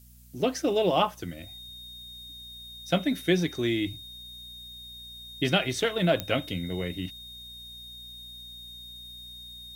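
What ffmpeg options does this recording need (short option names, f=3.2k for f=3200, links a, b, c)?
-af "adeclick=t=4,bandreject=f=60.4:t=h:w=4,bandreject=f=120.8:t=h:w=4,bandreject=f=181.2:t=h:w=4,bandreject=f=241.6:t=h:w=4,bandreject=f=3.7k:w=30,afftdn=nr=29:nf=-44"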